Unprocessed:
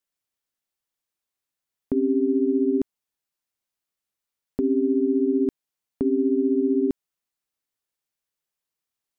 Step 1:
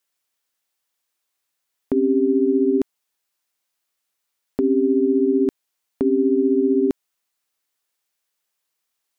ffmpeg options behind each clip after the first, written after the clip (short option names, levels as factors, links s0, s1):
-af "lowshelf=f=310:g=-11,volume=2.82"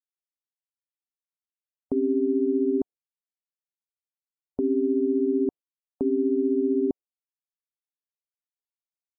-af "afftdn=nr=30:nf=-35,volume=0.531"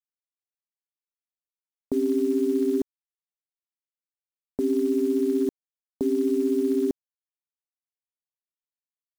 -af "acrusher=bits=8:dc=4:mix=0:aa=0.000001"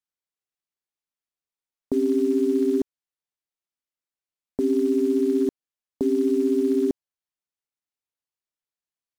-af "highshelf=f=12000:g=-9.5,volume=1.26"